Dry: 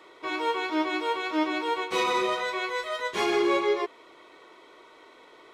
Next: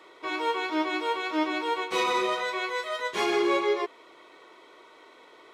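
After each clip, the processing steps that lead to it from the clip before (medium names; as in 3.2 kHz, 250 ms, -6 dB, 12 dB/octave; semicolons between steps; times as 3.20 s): bass shelf 130 Hz -7.5 dB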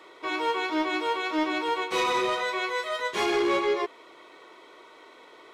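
saturation -20 dBFS, distortion -19 dB; trim +2 dB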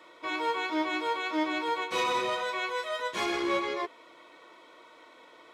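comb of notches 400 Hz; trim -2 dB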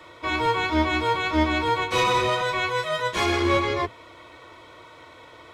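octave divider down 2 oct, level -1 dB; trim +7 dB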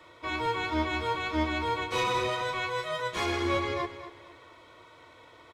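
feedback delay 234 ms, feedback 31%, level -13 dB; trim -7 dB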